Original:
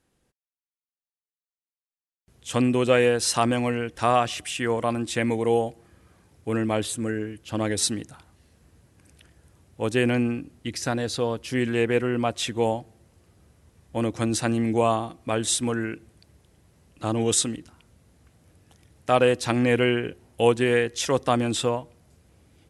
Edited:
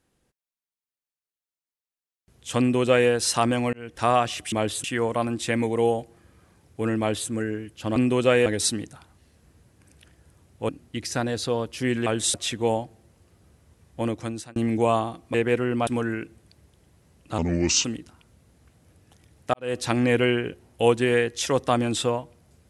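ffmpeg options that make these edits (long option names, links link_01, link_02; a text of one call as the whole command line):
ffmpeg -i in.wav -filter_complex "[0:a]asplit=15[link_01][link_02][link_03][link_04][link_05][link_06][link_07][link_08][link_09][link_10][link_11][link_12][link_13][link_14][link_15];[link_01]atrim=end=3.73,asetpts=PTS-STARTPTS,afade=type=out:start_time=3.726:duration=0.004:curve=hsin[link_16];[link_02]atrim=start=3.73:end=4.522,asetpts=PTS-STARTPTS,afade=type=in:duration=0.27[link_17];[link_03]atrim=start=6.658:end=6.982[link_18];[link_04]atrim=start=4.518:end=7.642[link_19];[link_05]atrim=start=2.588:end=3.092[link_20];[link_06]atrim=start=7.638:end=9.872[link_21];[link_07]atrim=start=10.398:end=11.772[link_22];[link_08]atrim=start=15.298:end=15.582[link_23];[link_09]atrim=start=12.298:end=14.52,asetpts=PTS-STARTPTS,afade=type=out:start_time=1.662:duration=0.56[link_24];[link_10]atrim=start=14.52:end=15.302,asetpts=PTS-STARTPTS,afade=type=in:duration=0.004:curve=hsin[link_25];[link_11]atrim=start=11.768:end=12.302[link_26];[link_12]atrim=start=15.578:end=17.094[link_27];[link_13]atrim=start=17.09:end=17.44,asetpts=PTS-STARTPTS,asetrate=33075,aresample=44100[link_28];[link_14]atrim=start=17.436:end=19.13,asetpts=PTS-STARTPTS,afade=type=out:start_time=1.69:duration=0.004:curve=hsin[link_29];[link_15]atrim=start=19.13,asetpts=PTS-STARTPTS,afade=type=in:duration=0.25:curve=qua[link_30];[link_16][link_17]concat=n=2:v=0:a=1[link_31];[link_31][link_18]acrossfade=duration=0.004:curve1=hsin:curve2=hsin[link_32];[link_32][link_19]acrossfade=duration=0.004:curve1=hsin:curve2=hsin[link_33];[link_33][link_20]acrossfade=duration=0.004:curve1=hsin:curve2=hsin[link_34];[link_34][link_21]acrossfade=duration=0.004:curve1=hsin:curve2=hsin[link_35];[link_35][link_22]acrossfade=duration=0.004:curve1=hsin:curve2=hsin[link_36];[link_36][link_23]acrossfade=duration=0.004:curve1=hsin:curve2=hsin[link_37];[link_24][link_25]concat=n=2:v=0:a=1[link_38];[link_37][link_38]acrossfade=duration=0.004:curve1=hsin:curve2=hsin[link_39];[link_39][link_26]acrossfade=duration=0.004:curve1=hsin:curve2=hsin[link_40];[link_40][link_27]acrossfade=duration=0.004:curve1=hsin:curve2=hsin[link_41];[link_41][link_28]acrossfade=duration=0.004:curve1=hsin:curve2=hsin[link_42];[link_29][link_30]concat=n=2:v=0:a=1[link_43];[link_42][link_43]acrossfade=duration=0.004:curve1=hsin:curve2=hsin" out.wav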